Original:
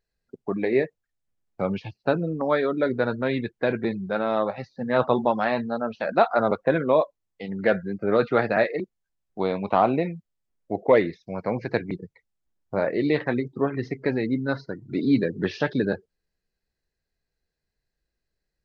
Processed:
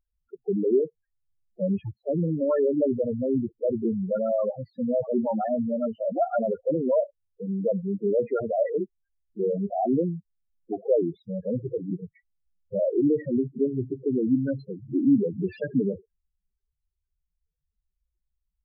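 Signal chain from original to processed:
brickwall limiter −14.5 dBFS, peak gain reduction 8 dB
spectral peaks only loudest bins 4
level +3.5 dB

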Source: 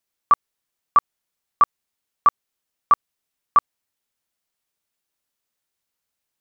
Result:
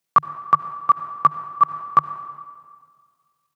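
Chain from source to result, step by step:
high-pass filter 88 Hz 24 dB per octave
on a send at −11 dB: convolution reverb RT60 3.3 s, pre-delay 118 ms
on the sum: tempo change 1.8×
parametric band 150 Hz +15 dB 0.27 octaves
level +2.5 dB

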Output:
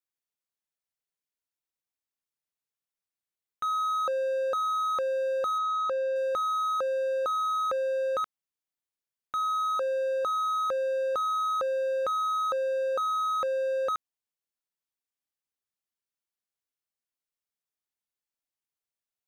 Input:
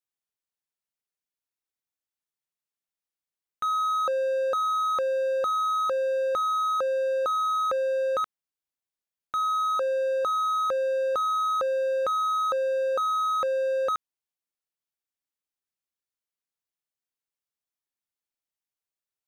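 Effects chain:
0:05.58–0:06.16: high-frequency loss of the air 70 metres
level −2.5 dB

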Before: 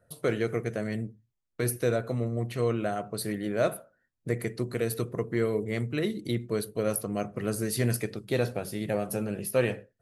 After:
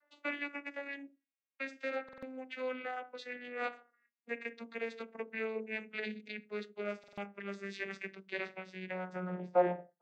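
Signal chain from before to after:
vocoder with a gliding carrier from D4, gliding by −9 semitones
band-pass filter sweep 2,300 Hz → 880 Hz, 0:08.90–0:09.48
buffer that repeats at 0:02.04/0:06.99, samples 2,048, times 3
level +11 dB

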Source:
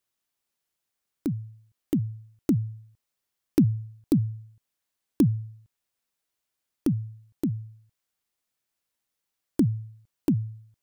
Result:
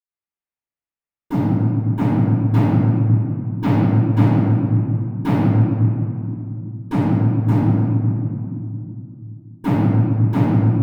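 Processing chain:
high shelf with overshoot 3,000 Hz −8 dB, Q 1.5
leveller curve on the samples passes 5
convolution reverb RT60 2.6 s, pre-delay 47 ms, DRR −60 dB
level −15.5 dB

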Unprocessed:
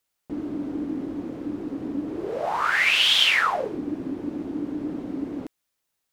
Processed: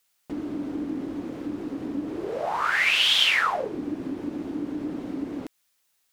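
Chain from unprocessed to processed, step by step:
one half of a high-frequency compander encoder only
level −1.5 dB

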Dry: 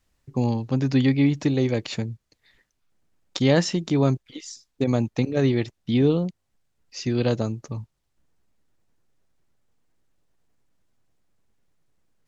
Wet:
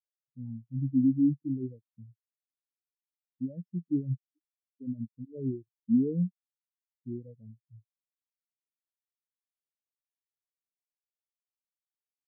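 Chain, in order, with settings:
low-pass filter 3,200 Hz
brickwall limiter −16 dBFS, peak gain reduction 9.5 dB
every bin expanded away from the loudest bin 4 to 1

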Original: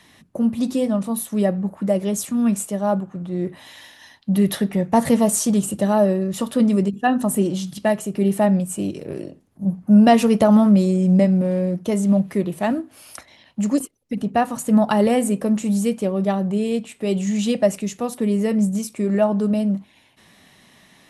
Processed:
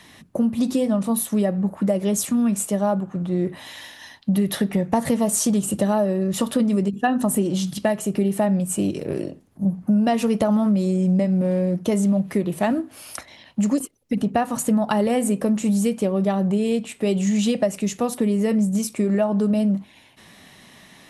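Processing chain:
downward compressor, threshold −21 dBFS, peak gain reduction 12 dB
level +4 dB

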